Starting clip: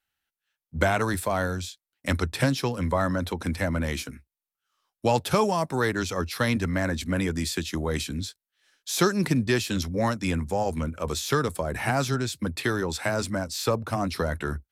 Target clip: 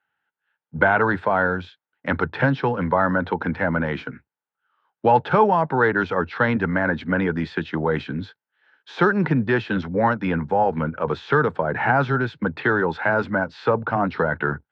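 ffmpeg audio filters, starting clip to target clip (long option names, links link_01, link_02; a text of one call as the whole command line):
ffmpeg -i in.wav -filter_complex "[0:a]asplit=2[link_01][link_02];[link_02]alimiter=limit=-19dB:level=0:latency=1:release=26,volume=-1dB[link_03];[link_01][link_03]amix=inputs=2:normalize=0,highpass=frequency=110:width=0.5412,highpass=frequency=110:width=1.3066,equalizer=frequency=150:width_type=q:width=4:gain=3,equalizer=frequency=460:width_type=q:width=4:gain=5,equalizer=frequency=870:width_type=q:width=4:gain=9,equalizer=frequency=1500:width_type=q:width=4:gain=9,equalizer=frequency=2400:width_type=q:width=4:gain=-4,lowpass=frequency=2800:width=0.5412,lowpass=frequency=2800:width=1.3066,volume=-1.5dB" out.wav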